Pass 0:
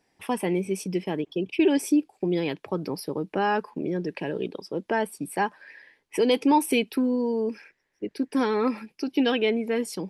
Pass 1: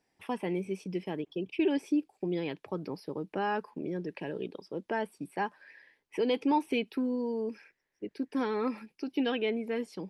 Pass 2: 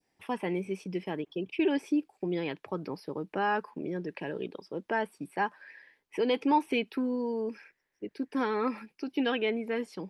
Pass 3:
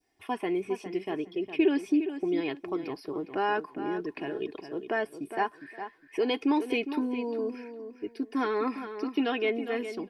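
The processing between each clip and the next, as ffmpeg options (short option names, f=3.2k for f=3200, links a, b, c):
-filter_complex "[0:a]acrossover=split=4400[a][b];[b]acompressor=threshold=-54dB:ratio=4:attack=1:release=60[c];[a][c]amix=inputs=2:normalize=0,volume=-7dB"
-af "adynamicequalizer=threshold=0.00562:dfrequency=1400:dqfactor=0.75:tfrequency=1400:tqfactor=0.75:attack=5:release=100:ratio=0.375:range=2.5:mode=boostabove:tftype=bell"
-filter_complex "[0:a]aecho=1:1:2.8:0.6,asplit=2[a][b];[b]adelay=409,lowpass=f=4k:p=1,volume=-10dB,asplit=2[c][d];[d]adelay=409,lowpass=f=4k:p=1,volume=0.22,asplit=2[e][f];[f]adelay=409,lowpass=f=4k:p=1,volume=0.22[g];[a][c][e][g]amix=inputs=4:normalize=0"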